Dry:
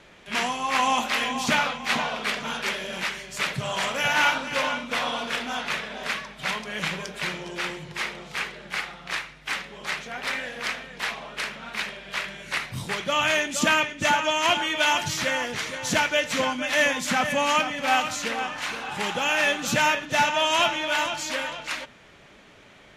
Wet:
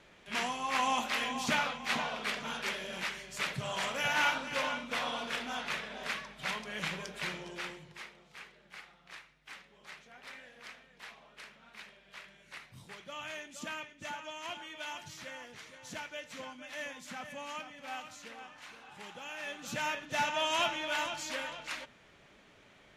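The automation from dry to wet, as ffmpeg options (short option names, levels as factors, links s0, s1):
-af "volume=1.41,afade=t=out:st=7.36:d=0.74:silence=0.251189,afade=t=in:st=19.4:d=0.99:silence=0.281838"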